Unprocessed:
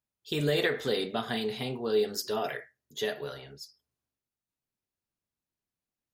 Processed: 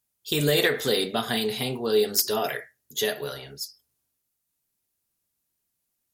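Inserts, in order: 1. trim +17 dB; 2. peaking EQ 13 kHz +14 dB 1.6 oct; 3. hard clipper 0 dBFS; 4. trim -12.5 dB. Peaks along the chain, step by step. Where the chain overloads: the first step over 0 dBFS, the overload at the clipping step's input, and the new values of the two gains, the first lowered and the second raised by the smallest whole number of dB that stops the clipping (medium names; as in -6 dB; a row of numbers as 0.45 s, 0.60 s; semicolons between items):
+2.0 dBFS, +6.0 dBFS, 0.0 dBFS, -12.5 dBFS; step 1, 6.0 dB; step 1 +11 dB, step 4 -6.5 dB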